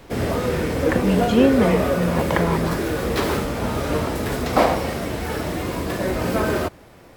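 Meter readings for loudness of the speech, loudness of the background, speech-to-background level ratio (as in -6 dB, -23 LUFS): -21.5 LUFS, -22.5 LUFS, 1.0 dB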